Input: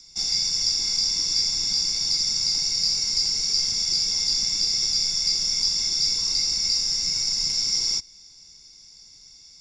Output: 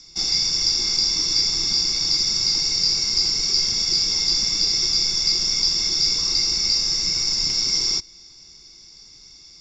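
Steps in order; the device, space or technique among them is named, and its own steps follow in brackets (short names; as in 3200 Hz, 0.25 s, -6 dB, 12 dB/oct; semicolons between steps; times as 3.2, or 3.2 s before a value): inside a cardboard box (LPF 5100 Hz 12 dB/oct; small resonant body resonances 350/1200 Hz, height 8 dB); gain +6 dB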